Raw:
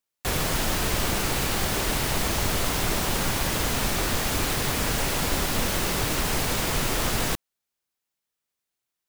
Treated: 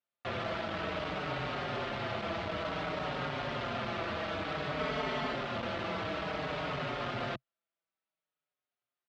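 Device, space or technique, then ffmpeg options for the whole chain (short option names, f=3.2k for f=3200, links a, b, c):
barber-pole flanger into a guitar amplifier: -filter_complex "[0:a]asplit=2[a][b];[b]adelay=5.2,afreqshift=-0.56[c];[a][c]amix=inputs=2:normalize=1,asoftclip=type=tanh:threshold=-27.5dB,highpass=110,equalizer=f=130:t=q:w=4:g=3,equalizer=f=630:t=q:w=4:g=9,equalizer=f=1.3k:t=q:w=4:g=6,lowpass=f=3.6k:w=0.5412,lowpass=f=3.6k:w=1.3066,asettb=1/sr,asplit=3[d][e][f];[d]atrim=end=4.794[g];[e]atrim=start=4.79:end=5.34,asetpts=PTS-STARTPTS,afade=t=in:d=0.004:c=qsin,afade=t=out:st=0.546:d=0.004:c=qsin,aecho=1:1:4.6:0.79,atrim=end_sample=24255[h];[f]atrim=start=5.336[i];[g][h]acrossfade=d=0.004:c1=hsin:c2=qsin[j];[j][i]acrossfade=d=0.004:c1=qsin:c2=hsin,volume=-3dB"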